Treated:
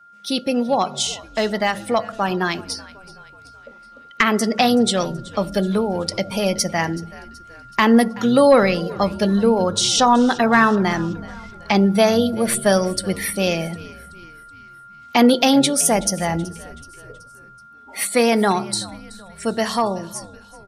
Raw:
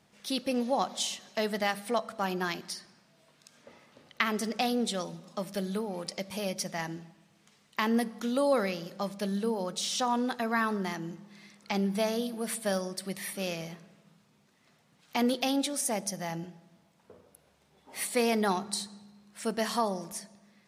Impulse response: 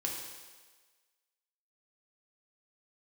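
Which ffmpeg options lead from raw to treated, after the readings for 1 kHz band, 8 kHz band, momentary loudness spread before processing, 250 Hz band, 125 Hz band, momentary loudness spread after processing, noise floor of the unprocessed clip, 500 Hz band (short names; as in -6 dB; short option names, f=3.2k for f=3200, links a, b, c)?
+13.0 dB, +12.5 dB, 11 LU, +13.5 dB, +14.0 dB, 15 LU, -66 dBFS, +13.0 dB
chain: -filter_complex "[0:a]aeval=exprs='val(0)+0.002*sin(2*PI*1400*n/s)':c=same,aeval=exprs='clip(val(0),-1,0.112)':c=same,asplit=2[a][b];[1:a]atrim=start_sample=2205,atrim=end_sample=3969[c];[b][c]afir=irnorm=-1:irlink=0,volume=-18.5dB[d];[a][d]amix=inputs=2:normalize=0,acontrast=80,afftdn=nr=14:nf=-37,dynaudnorm=f=330:g=21:m=5dB,asplit=2[e][f];[f]asplit=4[g][h][i][j];[g]adelay=377,afreqshift=-100,volume=-20dB[k];[h]adelay=754,afreqshift=-200,volume=-25.7dB[l];[i]adelay=1131,afreqshift=-300,volume=-31.4dB[m];[j]adelay=1508,afreqshift=-400,volume=-37dB[n];[k][l][m][n]amix=inputs=4:normalize=0[o];[e][o]amix=inputs=2:normalize=0,volume=2dB"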